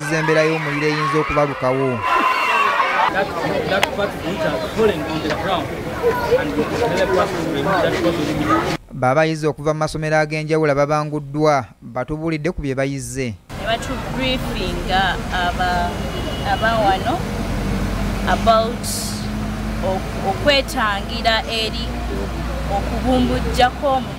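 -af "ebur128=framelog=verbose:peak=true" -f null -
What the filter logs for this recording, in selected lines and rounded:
Integrated loudness:
  I:         -19.2 LUFS
  Threshold: -29.2 LUFS
Loudness range:
  LRA:         3.6 LU
  Threshold: -39.4 LUFS
  LRA low:   -21.1 LUFS
  LRA high:  -17.5 LUFS
True peak:
  Peak:       -3.5 dBFS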